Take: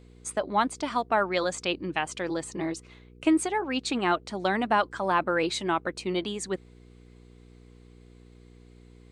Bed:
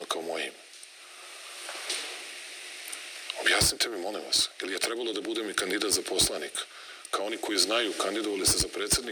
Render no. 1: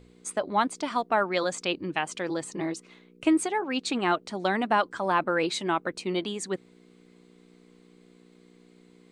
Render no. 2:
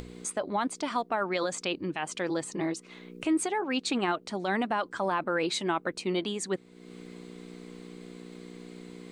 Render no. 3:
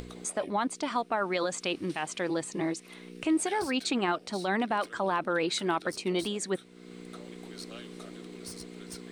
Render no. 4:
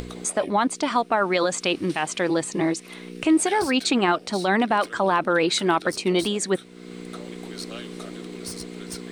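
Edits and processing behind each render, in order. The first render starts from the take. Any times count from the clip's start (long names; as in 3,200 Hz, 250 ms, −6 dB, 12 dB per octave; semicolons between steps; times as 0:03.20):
hum removal 60 Hz, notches 2
upward compression, threshold −32 dBFS; brickwall limiter −19.5 dBFS, peak gain reduction 8 dB
mix in bed −20.5 dB
level +8 dB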